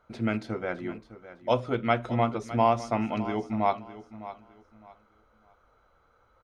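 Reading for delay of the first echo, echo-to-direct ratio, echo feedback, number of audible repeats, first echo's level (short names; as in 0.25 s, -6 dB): 0.608 s, -14.5 dB, 26%, 2, -15.0 dB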